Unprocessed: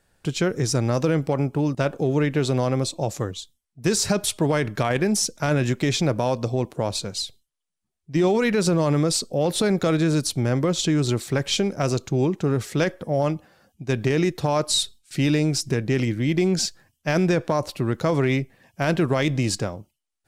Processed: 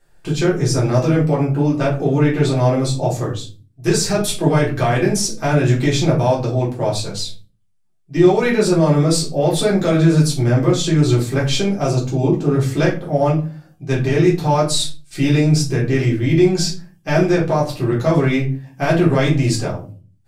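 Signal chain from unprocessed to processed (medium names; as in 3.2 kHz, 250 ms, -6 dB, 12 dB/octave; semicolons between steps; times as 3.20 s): 11.77–12.52 s: peaking EQ 1.8 kHz -7.5 dB 0.8 oct; simulated room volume 190 m³, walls furnished, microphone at 3.7 m; trim -3.5 dB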